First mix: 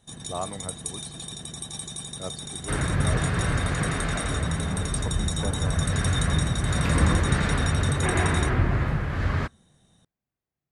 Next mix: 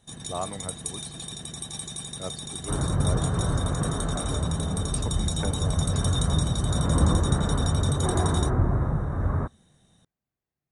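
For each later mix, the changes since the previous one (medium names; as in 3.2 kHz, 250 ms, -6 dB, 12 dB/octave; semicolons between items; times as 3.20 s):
second sound: add low-pass 1.2 kHz 24 dB/octave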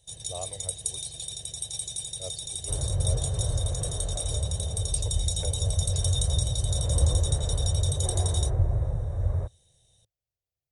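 master: add FFT filter 110 Hz 0 dB, 220 Hz -24 dB, 540 Hz -1 dB, 1.3 kHz -20 dB, 2.8 kHz -2 dB, 5.2 kHz +3 dB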